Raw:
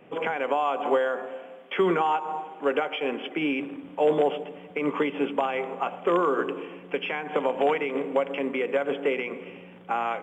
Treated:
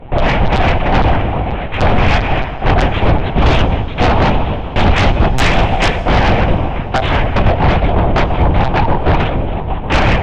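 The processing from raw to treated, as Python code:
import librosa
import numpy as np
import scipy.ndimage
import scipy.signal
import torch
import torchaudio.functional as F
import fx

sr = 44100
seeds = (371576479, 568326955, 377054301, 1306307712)

y = fx.wiener(x, sr, points=15)
y = fx.noise_vocoder(y, sr, seeds[0], bands=4)
y = fx.chorus_voices(y, sr, voices=2, hz=0.25, base_ms=22, depth_ms=3.0, mix_pct=45)
y = y + 10.0 ** (-16.0 / 20.0) * np.pad(y, (int(941 * sr / 1000.0), 0))[:len(y)]
y = fx.rider(y, sr, range_db=4, speed_s=0.5)
y = fx.high_shelf(y, sr, hz=2500.0, db=11.5, at=(3.45, 5.98), fade=0.02)
y = fx.lpc_monotone(y, sr, seeds[1], pitch_hz=130.0, order=8)
y = fx.fold_sine(y, sr, drive_db=12, ceiling_db=-12.0)
y = fx.low_shelf(y, sr, hz=140.0, db=7.5)
y = fx.rev_fdn(y, sr, rt60_s=2.8, lf_ratio=1.0, hf_ratio=0.9, size_ms=61.0, drr_db=15.5)
y = y * 10.0 ** (3.0 / 20.0)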